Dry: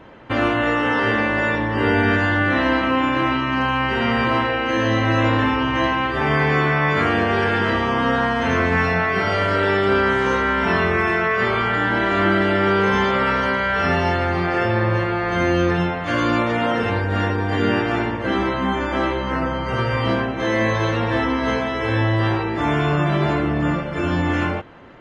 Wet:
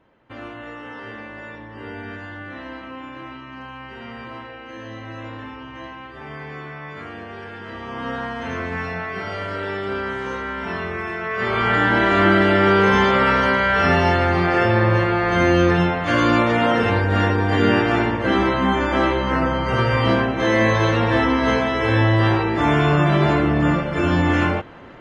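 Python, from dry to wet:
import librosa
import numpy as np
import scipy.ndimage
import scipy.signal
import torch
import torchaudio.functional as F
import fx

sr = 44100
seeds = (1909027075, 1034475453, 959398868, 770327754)

y = fx.gain(x, sr, db=fx.line((7.62, -16.5), (8.08, -8.5), (11.19, -8.5), (11.71, 2.5)))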